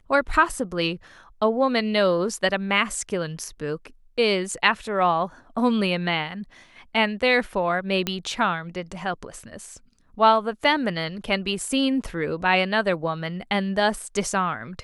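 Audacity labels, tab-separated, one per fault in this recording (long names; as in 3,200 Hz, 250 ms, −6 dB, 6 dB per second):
8.070000	8.070000	click −9 dBFS
10.640000	10.640000	drop-out 3 ms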